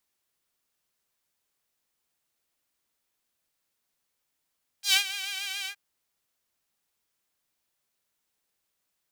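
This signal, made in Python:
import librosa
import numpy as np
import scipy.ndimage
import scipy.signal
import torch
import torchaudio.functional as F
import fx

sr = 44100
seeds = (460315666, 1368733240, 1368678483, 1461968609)

y = fx.sub_patch_vibrato(sr, seeds[0], note=79, wave='saw', wave2='saw', interval_st=0, detune_cents=16, level2_db=-9.0, sub_db=-8, noise_db=-30.0, kind='highpass', cutoff_hz=1800.0, q=1.9, env_oct=1.5, env_decay_s=0.12, env_sustain_pct=40, attack_ms=103.0, decay_s=0.1, sustain_db=-15, release_s=0.08, note_s=0.84, lfo_hz=7.0, vibrato_cents=60)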